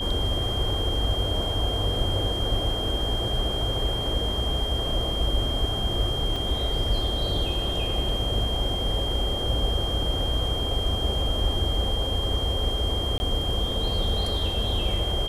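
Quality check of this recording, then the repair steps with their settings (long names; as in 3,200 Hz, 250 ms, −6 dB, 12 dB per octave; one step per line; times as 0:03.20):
whistle 3,200 Hz −29 dBFS
0:06.36: drop-out 3.3 ms
0:08.09: drop-out 3 ms
0:13.18–0:13.20: drop-out 20 ms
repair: notch filter 3,200 Hz, Q 30
repair the gap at 0:06.36, 3.3 ms
repair the gap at 0:08.09, 3 ms
repair the gap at 0:13.18, 20 ms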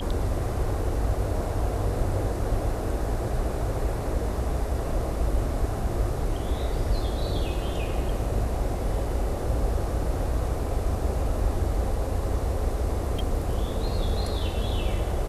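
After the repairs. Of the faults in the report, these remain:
none of them is left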